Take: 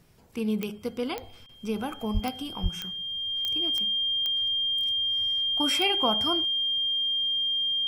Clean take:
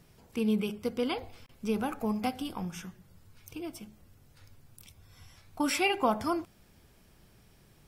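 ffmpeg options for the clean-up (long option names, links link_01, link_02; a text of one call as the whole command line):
ffmpeg -i in.wav -filter_complex "[0:a]adeclick=threshold=4,bandreject=frequency=3200:width=30,asplit=3[link_01][link_02][link_03];[link_01]afade=type=out:start_time=2.13:duration=0.02[link_04];[link_02]highpass=frequency=140:width=0.5412,highpass=frequency=140:width=1.3066,afade=type=in:start_time=2.13:duration=0.02,afade=type=out:start_time=2.25:duration=0.02[link_05];[link_03]afade=type=in:start_time=2.25:duration=0.02[link_06];[link_04][link_05][link_06]amix=inputs=3:normalize=0,asplit=3[link_07][link_08][link_09];[link_07]afade=type=out:start_time=2.62:duration=0.02[link_10];[link_08]highpass=frequency=140:width=0.5412,highpass=frequency=140:width=1.3066,afade=type=in:start_time=2.62:duration=0.02,afade=type=out:start_time=2.74:duration=0.02[link_11];[link_09]afade=type=in:start_time=2.74:duration=0.02[link_12];[link_10][link_11][link_12]amix=inputs=3:normalize=0" out.wav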